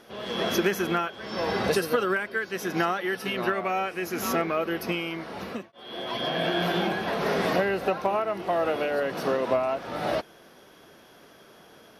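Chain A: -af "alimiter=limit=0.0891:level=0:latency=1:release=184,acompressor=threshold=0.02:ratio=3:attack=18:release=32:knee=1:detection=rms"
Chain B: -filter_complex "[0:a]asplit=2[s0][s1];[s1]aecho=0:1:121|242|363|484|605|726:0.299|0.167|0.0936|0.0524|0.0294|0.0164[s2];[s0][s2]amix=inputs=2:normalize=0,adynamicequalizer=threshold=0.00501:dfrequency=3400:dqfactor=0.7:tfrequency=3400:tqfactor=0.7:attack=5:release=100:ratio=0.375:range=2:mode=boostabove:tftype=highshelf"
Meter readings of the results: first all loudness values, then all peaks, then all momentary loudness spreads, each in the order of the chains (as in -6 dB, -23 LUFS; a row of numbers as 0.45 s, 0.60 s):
-34.5 LUFS, -26.5 LUFS; -22.5 dBFS, -11.0 dBFS; 18 LU, 8 LU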